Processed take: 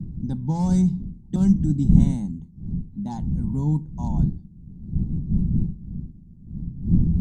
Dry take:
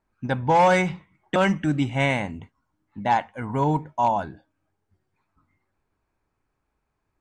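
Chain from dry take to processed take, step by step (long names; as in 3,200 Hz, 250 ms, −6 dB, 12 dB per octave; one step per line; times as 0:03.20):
wind on the microphone 96 Hz −23 dBFS
drawn EQ curve 110 Hz 0 dB, 180 Hz +12 dB, 360 Hz −4 dB, 560 Hz −19 dB, 870 Hz −13 dB, 1,200 Hz −22 dB, 2,500 Hz −29 dB, 4,000 Hz −6 dB, 6,500 Hz +1 dB
level −3.5 dB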